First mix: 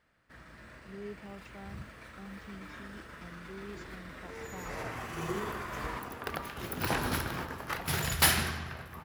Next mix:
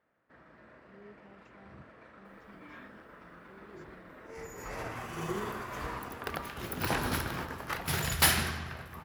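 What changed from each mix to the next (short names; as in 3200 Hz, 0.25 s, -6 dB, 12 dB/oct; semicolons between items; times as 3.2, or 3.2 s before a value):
speech -11.0 dB; first sound: add band-pass 530 Hz, Q 0.61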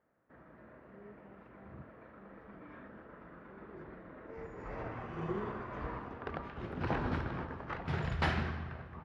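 first sound +3.0 dB; master: add tape spacing loss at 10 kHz 40 dB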